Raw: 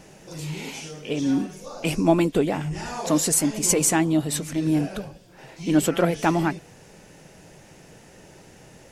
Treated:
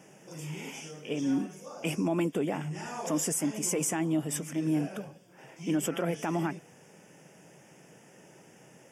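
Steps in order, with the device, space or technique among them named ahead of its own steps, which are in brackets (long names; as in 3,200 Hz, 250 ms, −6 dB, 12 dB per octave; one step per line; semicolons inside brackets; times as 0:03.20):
PA system with an anti-feedback notch (high-pass filter 130 Hz 24 dB per octave; Butterworth band-reject 4,100 Hz, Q 2.7; brickwall limiter −14 dBFS, peak gain reduction 8.5 dB)
level −6 dB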